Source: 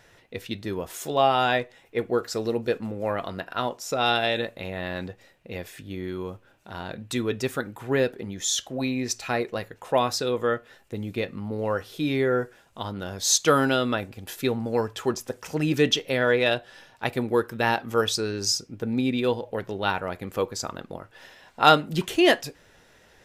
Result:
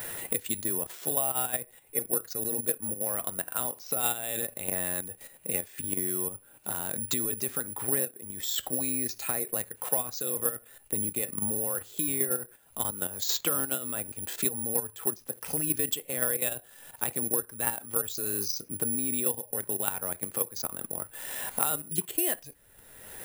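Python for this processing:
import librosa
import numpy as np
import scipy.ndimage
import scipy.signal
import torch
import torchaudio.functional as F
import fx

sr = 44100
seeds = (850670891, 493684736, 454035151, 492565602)

y = fx.level_steps(x, sr, step_db=11)
y = (np.kron(scipy.signal.resample_poly(y, 1, 4), np.eye(4)[0]) * 4)[:len(y)]
y = fx.band_squash(y, sr, depth_pct=100)
y = y * librosa.db_to_amplitude(-7.5)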